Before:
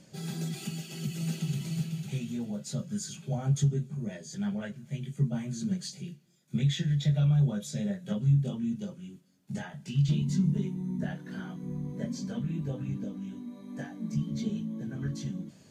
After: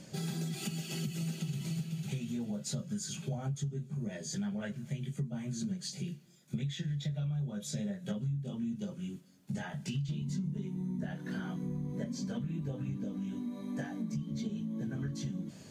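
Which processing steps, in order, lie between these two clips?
downward compressor 6 to 1, threshold −39 dBFS, peak gain reduction 17.5 dB
level +5 dB

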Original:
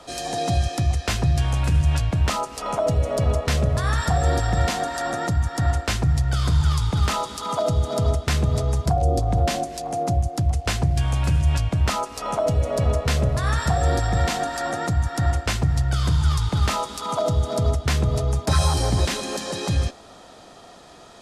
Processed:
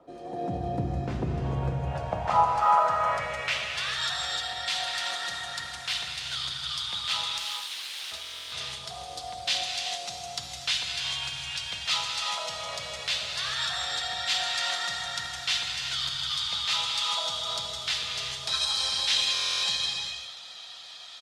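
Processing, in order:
parametric band 330 Hz −8.5 dB 1.5 octaves
brickwall limiter −17 dBFS, peak gain reduction 8 dB
repeating echo 498 ms, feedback 56%, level −22 dB
automatic gain control gain up to 5 dB
0:07.38–0:08.12: wrap-around overflow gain 28.5 dB
band-pass filter sweep 340 Hz → 3,600 Hz, 0:01.35–0:03.86
reverb whose tail is shaped and stops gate 450 ms flat, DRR 0 dB
buffer that repeats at 0:08.22/0:19.33, samples 1,024, times 12
level +4 dB
Opus 32 kbit/s 48,000 Hz

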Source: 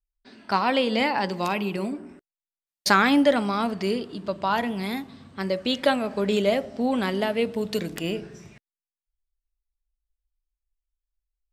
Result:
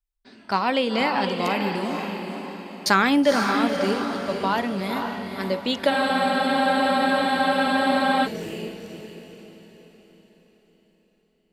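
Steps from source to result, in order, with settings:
feedback delay with all-pass diffusion 506 ms, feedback 44%, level −5 dB
frozen spectrum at 0:05.92, 2.34 s

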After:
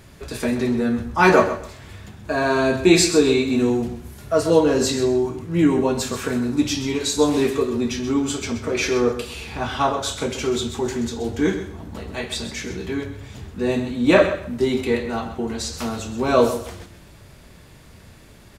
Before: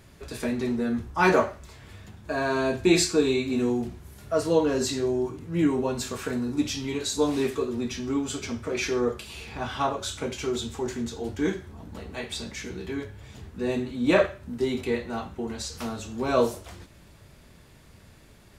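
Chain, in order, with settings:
repeating echo 129 ms, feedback 22%, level −11 dB
level +6 dB

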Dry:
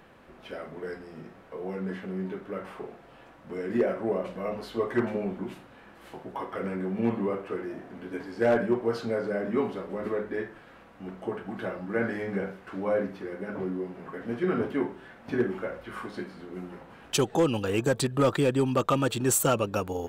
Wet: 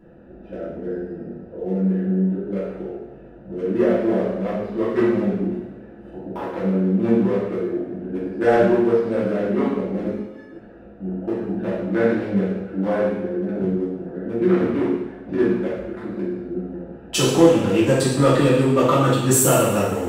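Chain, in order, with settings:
adaptive Wiener filter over 41 samples
in parallel at −2.5 dB: downward compressor, threshold −34 dBFS, peak gain reduction 14 dB
0:10.10–0:10.51: on the sum: stiff-string resonator 260 Hz, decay 0.37 s, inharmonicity 0.03
coupled-rooms reverb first 0.95 s, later 2.5 s, DRR −9.5 dB
level −2.5 dB

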